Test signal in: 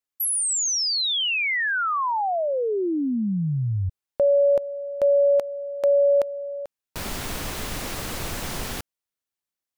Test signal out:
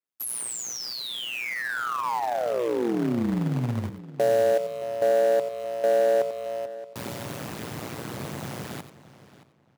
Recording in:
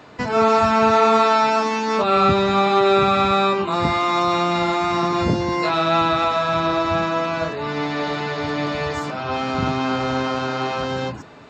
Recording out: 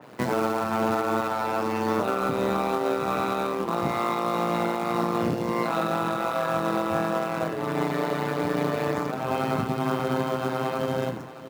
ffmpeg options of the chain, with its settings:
-filter_complex "[0:a]tremolo=f=120:d=0.974,asplit=2[s0][s1];[s1]aecho=0:1:90:0.224[s2];[s0][s2]amix=inputs=2:normalize=0,alimiter=limit=0.188:level=0:latency=1:release=352,acrusher=bits=2:mode=log:mix=0:aa=0.000001,highpass=f=110:w=0.5412,highpass=f=110:w=1.3066,tiltshelf=f=970:g=3.5,asplit=2[s3][s4];[s4]adelay=624,lowpass=f=3300:p=1,volume=0.158,asplit=2[s5][s6];[s6]adelay=624,lowpass=f=3300:p=1,volume=0.25[s7];[s5][s7]amix=inputs=2:normalize=0[s8];[s3][s8]amix=inputs=2:normalize=0,adynamicequalizer=threshold=0.00708:dfrequency=2800:dqfactor=0.7:tfrequency=2800:tqfactor=0.7:attack=5:release=100:ratio=0.375:range=2.5:mode=cutabove:tftype=highshelf"

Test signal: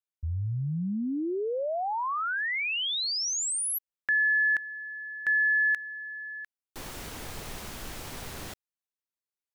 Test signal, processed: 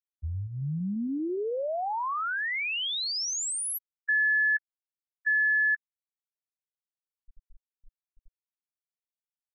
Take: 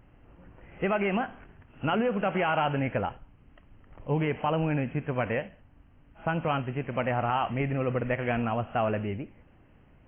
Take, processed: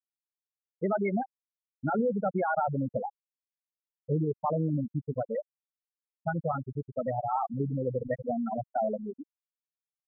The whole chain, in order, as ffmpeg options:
-af "equalizer=f=110:w=6.5:g=-6.5,afftfilt=real='re*gte(hypot(re,im),0.178)':imag='im*gte(hypot(re,im),0.178)':win_size=1024:overlap=0.75"

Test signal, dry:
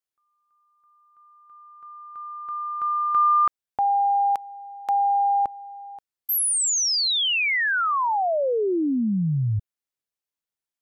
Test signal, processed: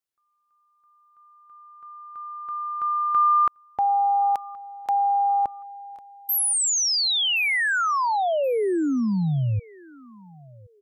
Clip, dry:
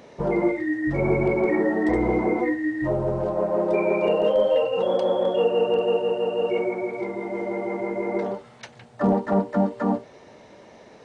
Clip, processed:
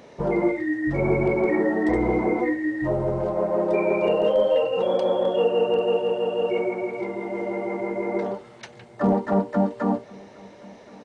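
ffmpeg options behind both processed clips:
-af "aecho=1:1:1073|2146:0.0631|0.0183"

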